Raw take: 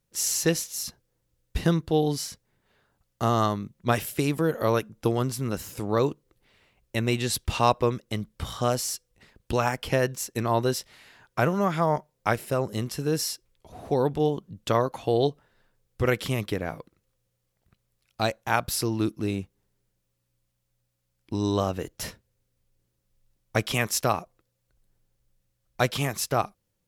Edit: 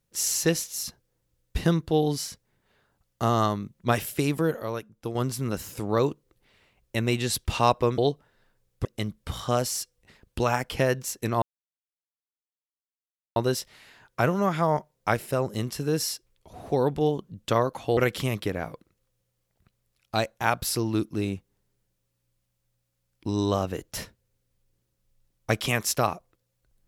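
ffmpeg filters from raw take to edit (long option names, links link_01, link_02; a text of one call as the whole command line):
ffmpeg -i in.wav -filter_complex "[0:a]asplit=7[link_01][link_02][link_03][link_04][link_05][link_06][link_07];[link_01]atrim=end=4.6,asetpts=PTS-STARTPTS,afade=type=out:start_time=4.33:duration=0.27:curve=log:silence=0.375837[link_08];[link_02]atrim=start=4.6:end=5.15,asetpts=PTS-STARTPTS,volume=-8.5dB[link_09];[link_03]atrim=start=5.15:end=7.982,asetpts=PTS-STARTPTS,afade=type=in:duration=0.27:curve=log:silence=0.375837[link_10];[link_04]atrim=start=15.158:end=16.032[link_11];[link_05]atrim=start=7.978:end=10.55,asetpts=PTS-STARTPTS,afade=type=out:start_time=2.568:duration=0.004:curve=hsin,apad=pad_dur=1.94[link_12];[link_06]atrim=start=10.55:end=15.162,asetpts=PTS-STARTPTS,afade=type=in:duration=0.004:curve=hsin[link_13];[link_07]atrim=start=16.028[link_14];[link_08][link_09][link_10]concat=n=3:v=0:a=1[link_15];[link_15][link_11]acrossfade=duration=0.004:curve1=hsin:curve2=hsin[link_16];[link_12][link_13]concat=n=2:v=0:a=1[link_17];[link_16][link_17]acrossfade=duration=0.004:curve1=hsin:curve2=hsin[link_18];[link_18][link_14]acrossfade=duration=0.004:curve1=hsin:curve2=hsin" out.wav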